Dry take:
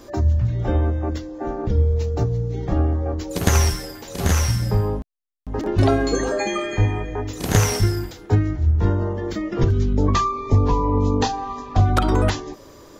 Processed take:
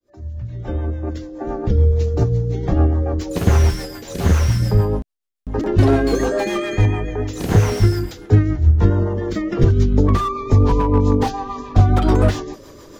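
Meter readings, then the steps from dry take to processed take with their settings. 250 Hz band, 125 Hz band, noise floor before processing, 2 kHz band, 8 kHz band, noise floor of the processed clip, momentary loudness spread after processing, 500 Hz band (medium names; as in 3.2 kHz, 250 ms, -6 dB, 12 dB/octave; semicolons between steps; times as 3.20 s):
+3.5 dB, +3.5 dB, -45 dBFS, 0.0 dB, -6.5 dB, -42 dBFS, 13 LU, +3.0 dB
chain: fade-in on the opening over 1.87 s; rotary cabinet horn 7 Hz; slew-rate limiter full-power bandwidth 67 Hz; trim +5.5 dB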